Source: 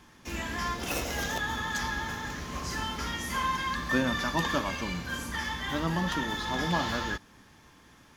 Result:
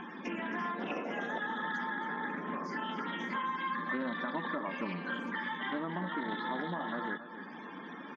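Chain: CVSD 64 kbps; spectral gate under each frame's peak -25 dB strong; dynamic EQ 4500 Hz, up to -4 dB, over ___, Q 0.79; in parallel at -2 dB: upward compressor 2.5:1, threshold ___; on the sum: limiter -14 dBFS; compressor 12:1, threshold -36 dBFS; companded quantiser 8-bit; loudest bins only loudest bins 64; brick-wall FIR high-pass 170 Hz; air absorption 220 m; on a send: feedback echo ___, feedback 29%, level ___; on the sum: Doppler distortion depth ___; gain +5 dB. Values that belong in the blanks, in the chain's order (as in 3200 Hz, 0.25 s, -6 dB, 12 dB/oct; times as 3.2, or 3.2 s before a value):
-50 dBFS, -39 dBFS, 0.272 s, -11.5 dB, 0.14 ms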